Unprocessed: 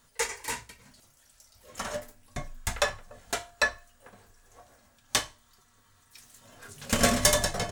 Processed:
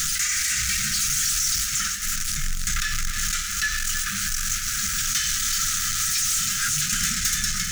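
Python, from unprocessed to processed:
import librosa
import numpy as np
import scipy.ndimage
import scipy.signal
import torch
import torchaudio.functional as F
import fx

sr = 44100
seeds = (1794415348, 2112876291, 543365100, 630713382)

p1 = x + 0.5 * 10.0 ** (-32.0 / 20.0) * np.sign(x)
p2 = fx.graphic_eq_15(p1, sr, hz=(100, 630, 6300), db=(-10, 9, 10))
p3 = fx.over_compress(p2, sr, threshold_db=-33.0, ratio=-1.0)
p4 = p2 + F.gain(torch.from_numpy(p3), 2.5).numpy()
p5 = np.clip(10.0 ** (18.5 / 20.0) * p4, -1.0, 1.0) / 10.0 ** (18.5 / 20.0)
p6 = fx.brickwall_bandstop(p5, sr, low_hz=220.0, high_hz=1200.0)
y = p6 + fx.echo_feedback(p6, sr, ms=317, feedback_pct=52, wet_db=-9.0, dry=0)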